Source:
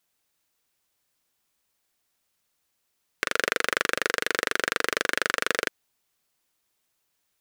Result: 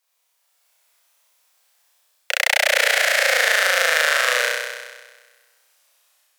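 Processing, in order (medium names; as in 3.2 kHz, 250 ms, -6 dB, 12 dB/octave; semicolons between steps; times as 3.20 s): gliding tape speed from 154% -> 78%; level rider gain up to 6 dB; steep high-pass 490 Hz 72 dB/octave; on a send: flutter echo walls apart 5.5 m, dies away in 1.4 s; on the sum: trim +2.5 dB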